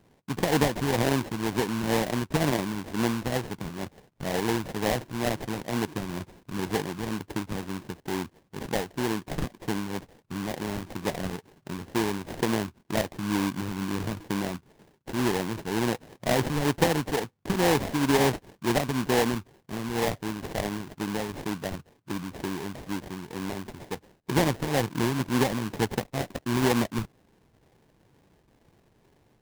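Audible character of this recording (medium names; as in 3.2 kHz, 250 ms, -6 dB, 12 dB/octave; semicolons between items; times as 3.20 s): phasing stages 8, 2.1 Hz, lowest notch 580–4100 Hz; aliases and images of a low sample rate 1.3 kHz, jitter 20%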